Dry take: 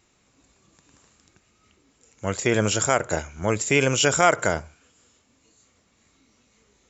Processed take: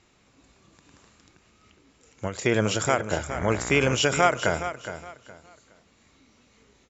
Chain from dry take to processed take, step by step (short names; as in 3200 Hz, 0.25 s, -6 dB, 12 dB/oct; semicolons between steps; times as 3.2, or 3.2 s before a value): LPF 5500 Hz 12 dB/oct; in parallel at -0.5 dB: compressor, threshold -35 dBFS, peak gain reduction 21 dB; 3.29–3.94 on the sum: buzz 60 Hz, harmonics 38, -33 dBFS -2 dB/oct; feedback echo 0.416 s, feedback 26%, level -11 dB; ending taper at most 170 dB/s; gain -2.5 dB